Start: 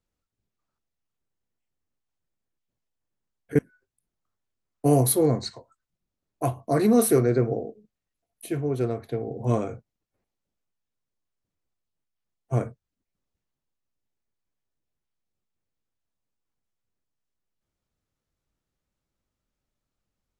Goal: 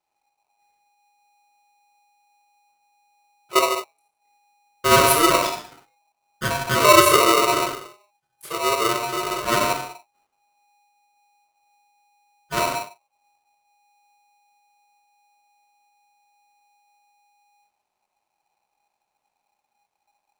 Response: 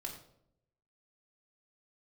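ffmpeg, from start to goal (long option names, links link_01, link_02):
-filter_complex "[1:a]atrim=start_sample=2205,afade=type=out:start_time=0.21:duration=0.01,atrim=end_sample=9702,asetrate=28665,aresample=44100[link_01];[0:a][link_01]afir=irnorm=-1:irlink=0,aeval=exprs='val(0)*sgn(sin(2*PI*820*n/s))':channel_layout=same,volume=2dB"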